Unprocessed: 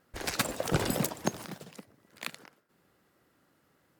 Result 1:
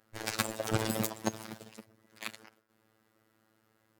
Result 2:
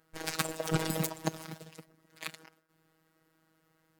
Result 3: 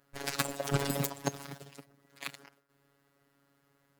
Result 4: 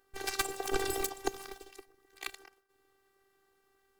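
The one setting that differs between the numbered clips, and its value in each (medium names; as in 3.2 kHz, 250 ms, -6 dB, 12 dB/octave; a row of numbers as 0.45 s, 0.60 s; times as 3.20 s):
robot voice, frequency: 110 Hz, 160 Hz, 140 Hz, 390 Hz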